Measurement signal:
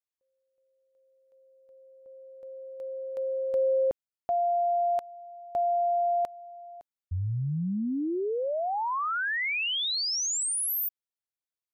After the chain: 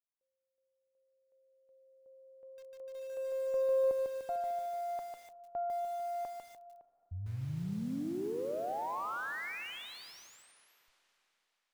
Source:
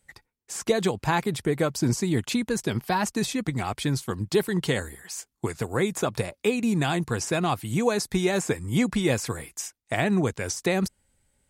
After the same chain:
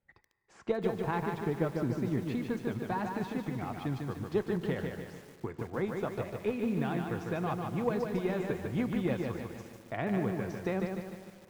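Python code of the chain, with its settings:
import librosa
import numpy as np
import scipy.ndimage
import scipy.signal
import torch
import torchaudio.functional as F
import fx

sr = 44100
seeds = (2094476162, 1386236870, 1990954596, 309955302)

y = fx.cheby_harmonics(x, sr, harmonics=(3, 4), levels_db=(-23, -25), full_scale_db=-10.0)
y = scipy.signal.sosfilt(scipy.signal.bessel(2, 1600.0, 'lowpass', norm='mag', fs=sr, output='sos'), y)
y = fx.low_shelf(y, sr, hz=81.0, db=-4.0)
y = fx.rev_schroeder(y, sr, rt60_s=3.8, comb_ms=31, drr_db=14.0)
y = fx.echo_crushed(y, sr, ms=149, feedback_pct=55, bits=8, wet_db=-4)
y = F.gain(torch.from_numpy(y), -6.5).numpy()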